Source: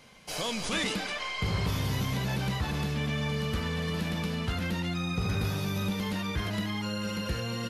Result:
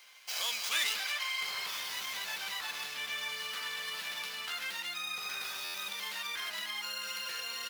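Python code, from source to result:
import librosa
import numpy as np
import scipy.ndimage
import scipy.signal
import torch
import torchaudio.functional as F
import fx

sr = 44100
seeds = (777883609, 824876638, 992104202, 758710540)

y = scipy.ndimage.median_filter(x, 5, mode='constant')
y = scipy.signal.sosfilt(scipy.signal.butter(2, 1300.0, 'highpass', fs=sr, output='sos'), y)
y = fx.high_shelf(y, sr, hz=5400.0, db=9.0)
y = fx.buffer_glitch(y, sr, at_s=(5.64,), block=512, repeats=8)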